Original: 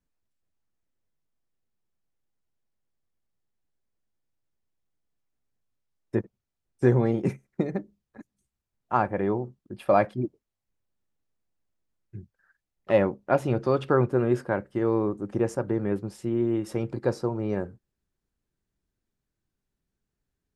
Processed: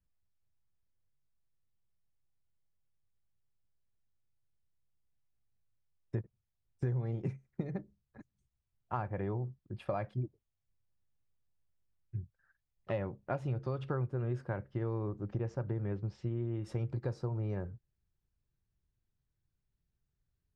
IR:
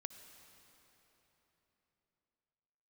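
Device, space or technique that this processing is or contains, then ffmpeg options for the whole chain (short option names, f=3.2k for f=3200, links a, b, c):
jukebox: -filter_complex "[0:a]asettb=1/sr,asplit=3[a][b][c];[a]atrim=end=14.534[d];[b]atrim=start=14.53:end=16.63,asetpts=PTS-STARTPTS,afade=t=in:d=0.004:c=qsin,afade=t=out:st=2.096:d=0.004:c=qsin,lowpass=f=5.8k:w=0.5412,lowpass=f=5.8k:w=1.3066[e];[c]atrim=start=16.626[f];[d][e]acrossfade=d=0.004:c1=hsin:c2=qsin[g];[g][f]acrossfade=d=0.004:c1=qsin:c2=hsin,lowpass=6.2k,lowshelf=f=170:t=q:w=1.5:g=8.5,acompressor=threshold=-25dB:ratio=6,volume=-7dB"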